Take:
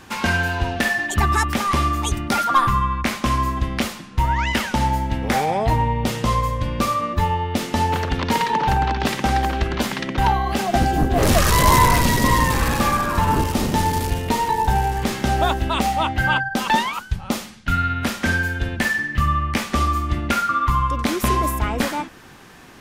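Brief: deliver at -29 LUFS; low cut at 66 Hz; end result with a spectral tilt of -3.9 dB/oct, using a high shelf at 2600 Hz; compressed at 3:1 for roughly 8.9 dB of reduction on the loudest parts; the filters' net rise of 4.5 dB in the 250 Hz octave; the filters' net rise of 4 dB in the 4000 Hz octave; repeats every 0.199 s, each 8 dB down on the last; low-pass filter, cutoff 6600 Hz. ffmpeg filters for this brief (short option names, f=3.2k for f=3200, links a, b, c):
-af "highpass=66,lowpass=6.6k,equalizer=f=250:t=o:g=5.5,highshelf=f=2.6k:g=-4,equalizer=f=4k:t=o:g=9,acompressor=threshold=-24dB:ratio=3,aecho=1:1:199|398|597|796|995:0.398|0.159|0.0637|0.0255|0.0102,volume=-3.5dB"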